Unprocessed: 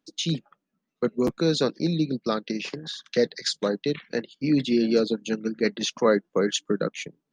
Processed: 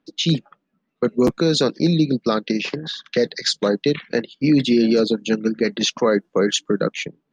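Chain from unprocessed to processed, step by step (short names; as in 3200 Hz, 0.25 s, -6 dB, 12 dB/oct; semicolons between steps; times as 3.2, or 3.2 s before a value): low-pass opened by the level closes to 2900 Hz, open at -18 dBFS; limiter -16 dBFS, peak gain reduction 7 dB; gain +8 dB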